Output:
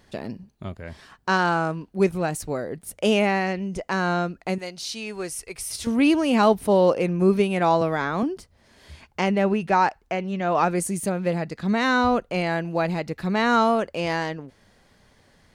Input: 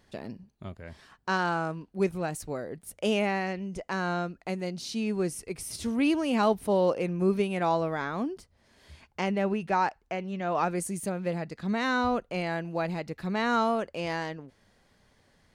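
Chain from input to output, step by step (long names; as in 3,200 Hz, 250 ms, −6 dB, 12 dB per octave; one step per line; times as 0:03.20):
0:04.58–0:05.87: parametric band 200 Hz −14.5 dB 2.4 octaves
0:07.81–0:08.23: multiband upward and downward compressor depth 40%
level +6.5 dB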